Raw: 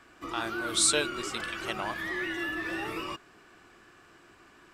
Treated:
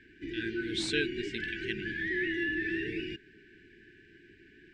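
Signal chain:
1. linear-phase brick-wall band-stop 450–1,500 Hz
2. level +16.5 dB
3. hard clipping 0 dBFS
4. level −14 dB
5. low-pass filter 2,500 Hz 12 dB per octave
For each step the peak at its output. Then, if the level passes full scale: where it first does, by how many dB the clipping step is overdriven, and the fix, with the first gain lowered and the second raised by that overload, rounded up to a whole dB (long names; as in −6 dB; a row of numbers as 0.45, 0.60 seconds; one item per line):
−11.5, +5.0, 0.0, −14.0, −15.0 dBFS
step 2, 5.0 dB
step 2 +11.5 dB, step 4 −9 dB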